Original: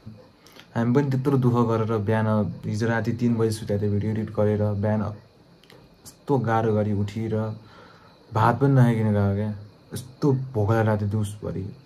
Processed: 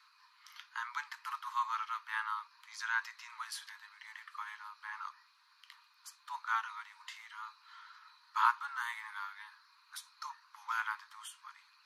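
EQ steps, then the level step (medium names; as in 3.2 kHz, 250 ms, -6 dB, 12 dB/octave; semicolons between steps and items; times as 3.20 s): steep high-pass 960 Hz 96 dB/octave; treble shelf 6.8 kHz -7.5 dB; -3.0 dB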